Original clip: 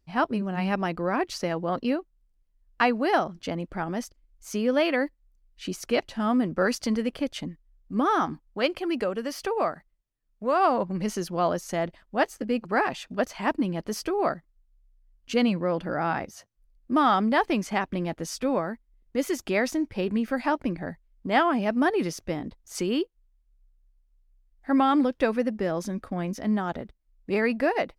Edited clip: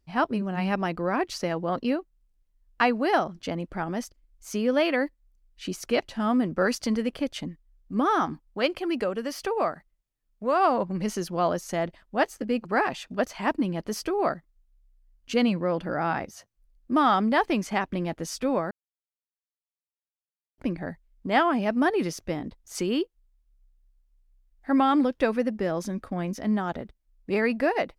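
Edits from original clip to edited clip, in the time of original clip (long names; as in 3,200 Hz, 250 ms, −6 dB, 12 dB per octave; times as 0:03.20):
0:18.71–0:20.58: silence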